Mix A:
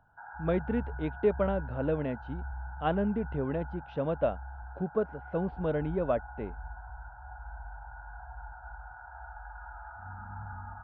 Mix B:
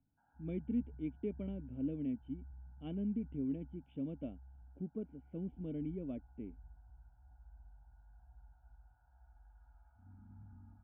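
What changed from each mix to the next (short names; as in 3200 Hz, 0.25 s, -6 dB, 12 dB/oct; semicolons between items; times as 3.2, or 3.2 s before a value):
master: add vocal tract filter i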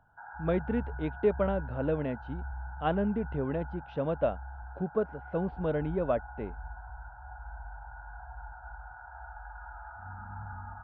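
master: remove vocal tract filter i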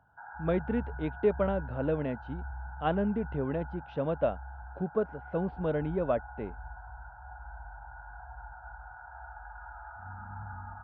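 master: add HPF 49 Hz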